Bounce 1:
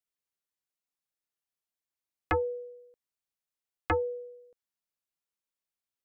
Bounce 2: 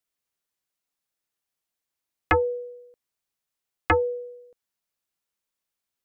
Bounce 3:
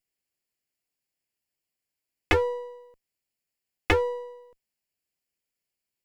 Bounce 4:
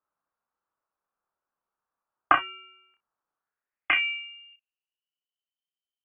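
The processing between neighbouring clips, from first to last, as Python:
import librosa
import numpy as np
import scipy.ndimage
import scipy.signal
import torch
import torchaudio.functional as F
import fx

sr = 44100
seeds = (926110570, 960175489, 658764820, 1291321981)

y1 = fx.dynamic_eq(x, sr, hz=2400.0, q=0.73, threshold_db=-44.0, ratio=4.0, max_db=5)
y1 = y1 * 10.0 ** (6.0 / 20.0)
y2 = fx.lower_of_two(y1, sr, delay_ms=0.4)
y3 = fx.filter_sweep_bandpass(y2, sr, from_hz=2100.0, to_hz=200.0, start_s=3.3, end_s=5.64, q=3.5)
y3 = fx.room_early_taps(y3, sr, ms=(28, 63), db=(-5.5, -16.0))
y3 = fx.freq_invert(y3, sr, carrier_hz=3300)
y3 = y3 * 10.0 ** (9.0 / 20.0)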